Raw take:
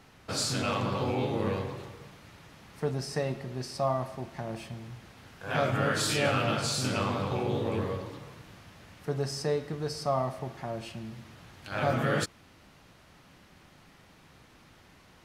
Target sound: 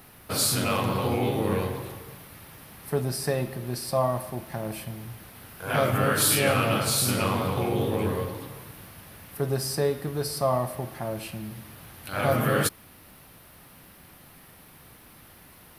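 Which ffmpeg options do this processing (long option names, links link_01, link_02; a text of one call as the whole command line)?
ffmpeg -i in.wav -af "aexciter=amount=10.7:drive=3.3:freq=10000,asetrate=42601,aresample=44100,volume=4dB" out.wav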